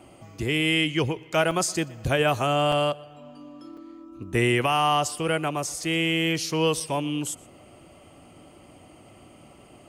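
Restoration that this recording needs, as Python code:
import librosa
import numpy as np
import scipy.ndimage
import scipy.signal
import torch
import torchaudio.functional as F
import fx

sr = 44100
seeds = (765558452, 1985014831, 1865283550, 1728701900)

y = fx.fix_interpolate(x, sr, at_s=(1.51, 2.72, 3.77, 6.8), length_ms=4.1)
y = fx.fix_echo_inverse(y, sr, delay_ms=121, level_db=-23.0)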